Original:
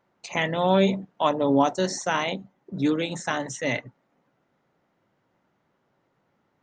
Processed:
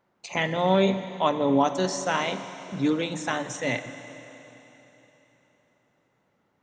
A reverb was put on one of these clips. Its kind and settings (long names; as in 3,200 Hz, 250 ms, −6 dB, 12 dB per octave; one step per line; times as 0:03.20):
four-comb reverb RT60 3.7 s, combs from 33 ms, DRR 10 dB
level −1 dB